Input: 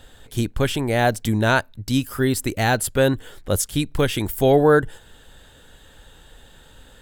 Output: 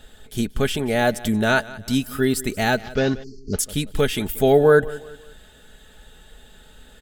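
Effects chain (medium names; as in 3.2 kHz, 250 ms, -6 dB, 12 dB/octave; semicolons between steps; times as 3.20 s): 2.78–3.59 s: CVSD coder 32 kbps; on a send: feedback delay 181 ms, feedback 39%, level -19 dB; 3.23–3.54 s: on the sum: spectral selection erased 440–4200 Hz; band-stop 1 kHz, Q 5.6; comb 4.7 ms, depth 48%; trim -1 dB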